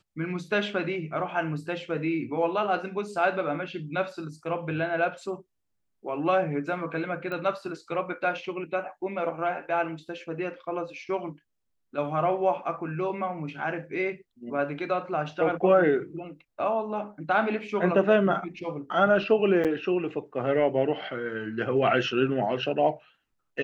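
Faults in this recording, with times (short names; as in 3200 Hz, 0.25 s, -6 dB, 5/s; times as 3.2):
7.32 pop -23 dBFS
19.64–19.65 gap 7.4 ms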